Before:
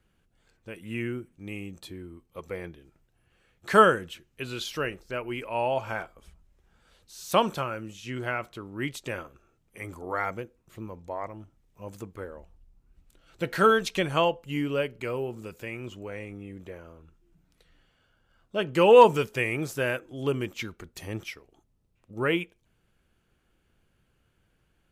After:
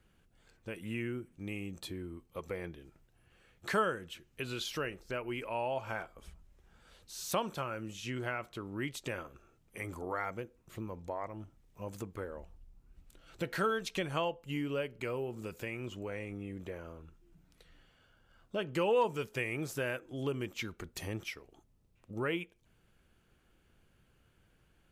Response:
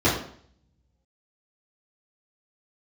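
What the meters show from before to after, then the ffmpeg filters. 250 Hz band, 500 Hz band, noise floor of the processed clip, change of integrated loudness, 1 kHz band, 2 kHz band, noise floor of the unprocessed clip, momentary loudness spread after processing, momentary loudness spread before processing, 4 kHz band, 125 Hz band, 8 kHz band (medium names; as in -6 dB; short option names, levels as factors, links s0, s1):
-7.0 dB, -11.0 dB, -70 dBFS, -11.0 dB, -11.5 dB, -8.0 dB, -71 dBFS, 14 LU, 22 LU, -7.5 dB, -6.0 dB, -3.5 dB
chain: -af "acompressor=threshold=0.01:ratio=2,volume=1.12"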